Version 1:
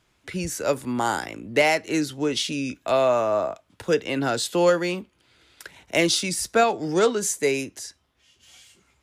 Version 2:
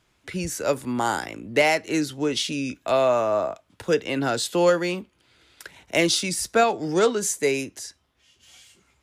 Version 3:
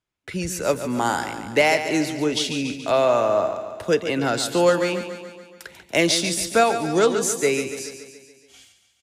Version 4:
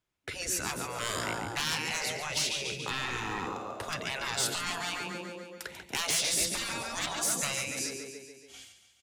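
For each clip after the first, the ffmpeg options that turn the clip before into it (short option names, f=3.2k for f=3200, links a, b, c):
-af anull
-filter_complex "[0:a]agate=range=-21dB:threshold=-51dB:ratio=16:detection=peak,asplit=2[a][b];[b]aecho=0:1:142|284|426|568|710|852|994:0.316|0.183|0.106|0.0617|0.0358|0.0208|0.012[c];[a][c]amix=inputs=2:normalize=0,volume=1.5dB"
-af "asoftclip=type=tanh:threshold=-16.5dB,afftfilt=real='re*lt(hypot(re,im),0.112)':imag='im*lt(hypot(re,im),0.112)':win_size=1024:overlap=0.75"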